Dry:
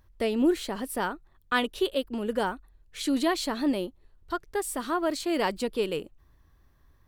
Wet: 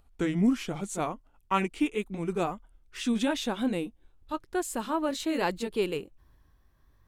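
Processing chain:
pitch glide at a constant tempo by −5.5 semitones ending unshifted

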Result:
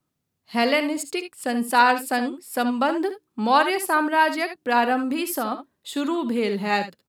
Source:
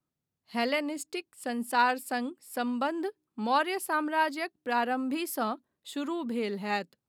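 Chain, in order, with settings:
0:05.08–0:05.52: downward compressor, threshold −30 dBFS, peak gain reduction 5.5 dB
ambience of single reflections 64 ms −14 dB, 75 ms −12.5 dB
level +8 dB

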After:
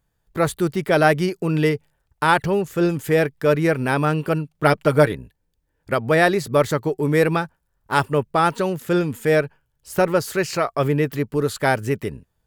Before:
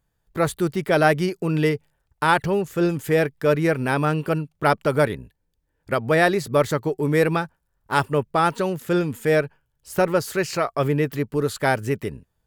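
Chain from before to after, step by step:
0:04.55–0:05.12: comb filter 6.5 ms, depth 54%
level +1.5 dB

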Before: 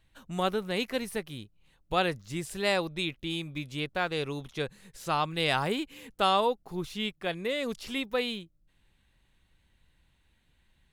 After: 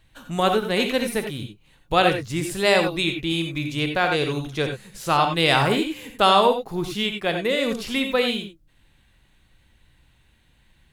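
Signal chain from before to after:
reverb whose tail is shaped and stops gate 110 ms rising, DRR 5 dB
level +8 dB

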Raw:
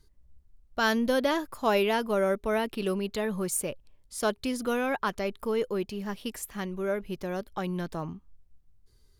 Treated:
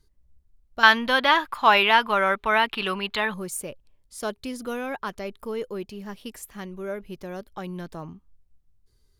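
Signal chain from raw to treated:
0:00.83–0:03.34: flat-topped bell 1,800 Hz +15.5 dB 2.7 octaves
level −2.5 dB

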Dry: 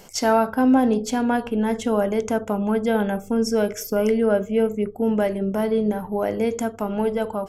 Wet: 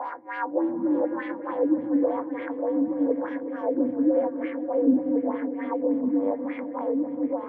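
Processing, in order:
spectrum smeared in time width 732 ms
harmonic generator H 6 −23 dB, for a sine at −13 dBFS
frequency shifter +78 Hz
LFO wah 0.95 Hz 210–2,100 Hz, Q 3.4
EQ curve with evenly spaced ripples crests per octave 1, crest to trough 7 dB
auto-filter low-pass sine 3.4 Hz 220–3,300 Hz
echo whose low-pass opens from repeat to repeat 184 ms, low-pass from 200 Hz, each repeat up 1 octave, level −6 dB
level +3.5 dB

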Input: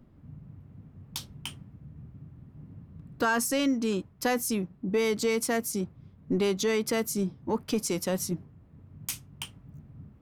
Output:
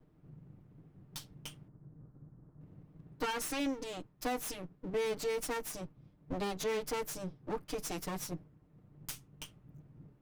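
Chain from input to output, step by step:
lower of the sound and its delayed copy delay 6.6 ms
0:01.68–0:02.61: low-pass filter 1,600 Hz 24 dB per octave
level −7 dB

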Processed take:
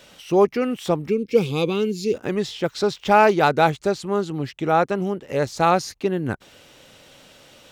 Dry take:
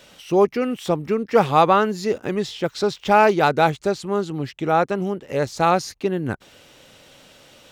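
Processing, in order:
gain on a spectral selection 0:01.10–0:02.14, 530–2,100 Hz −19 dB

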